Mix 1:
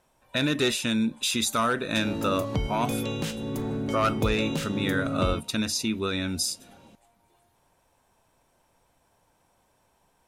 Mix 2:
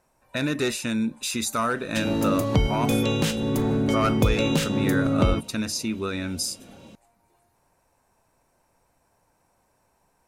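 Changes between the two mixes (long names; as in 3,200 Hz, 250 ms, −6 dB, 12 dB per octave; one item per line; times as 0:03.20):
speech: add parametric band 3,300 Hz −11.5 dB 0.3 octaves
background +7.0 dB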